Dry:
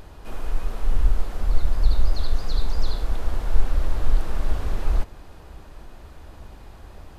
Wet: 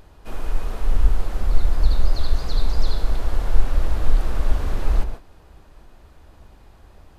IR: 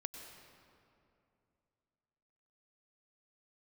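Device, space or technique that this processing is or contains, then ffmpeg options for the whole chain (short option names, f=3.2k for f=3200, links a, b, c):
keyed gated reverb: -filter_complex "[0:a]asplit=3[a][b][c];[1:a]atrim=start_sample=2205[d];[b][d]afir=irnorm=-1:irlink=0[e];[c]apad=whole_len=316983[f];[e][f]sidechaingate=range=-33dB:threshold=-33dB:ratio=16:detection=peak,volume=6.5dB[g];[a][g]amix=inputs=2:normalize=0,volume=-5.5dB"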